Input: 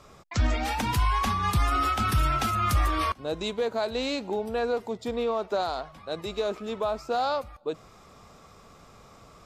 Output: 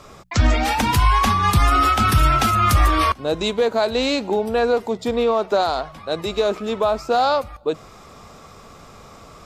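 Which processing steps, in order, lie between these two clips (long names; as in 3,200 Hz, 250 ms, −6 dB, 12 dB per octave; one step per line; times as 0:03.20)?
mains-hum notches 60/120/180 Hz
level +9 dB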